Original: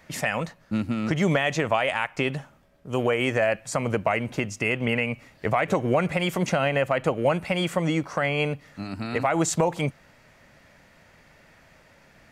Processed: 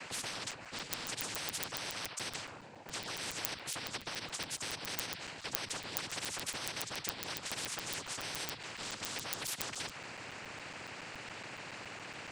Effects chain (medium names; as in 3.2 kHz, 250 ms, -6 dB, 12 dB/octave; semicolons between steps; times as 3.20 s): noise-vocoded speech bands 8; crackling interface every 0.14 s, samples 256, zero, from 0.51 s; spectrum-flattening compressor 10:1; trim +1 dB